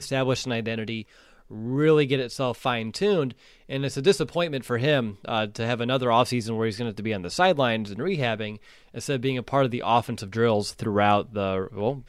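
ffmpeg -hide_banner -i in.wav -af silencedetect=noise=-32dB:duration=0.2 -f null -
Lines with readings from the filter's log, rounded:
silence_start: 1.02
silence_end: 1.51 | silence_duration: 0.50
silence_start: 3.32
silence_end: 3.71 | silence_duration: 0.39
silence_start: 8.56
silence_end: 8.96 | silence_duration: 0.40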